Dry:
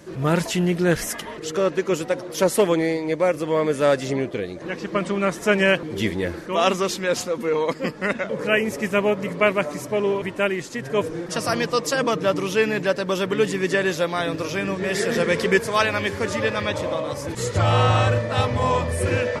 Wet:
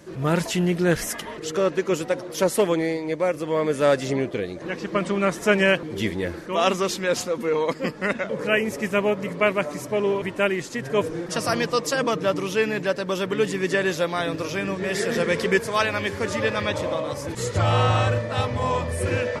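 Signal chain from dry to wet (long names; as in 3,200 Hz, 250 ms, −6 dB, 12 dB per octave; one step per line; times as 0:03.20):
speech leveller 2 s
level −2 dB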